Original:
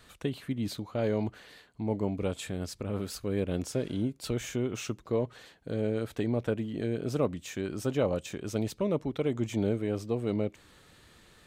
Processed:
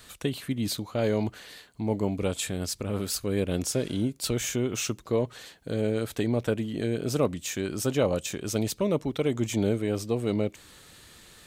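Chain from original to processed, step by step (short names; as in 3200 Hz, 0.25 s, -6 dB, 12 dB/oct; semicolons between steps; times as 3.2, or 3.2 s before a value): high shelf 3800 Hz +10 dB; gain +3 dB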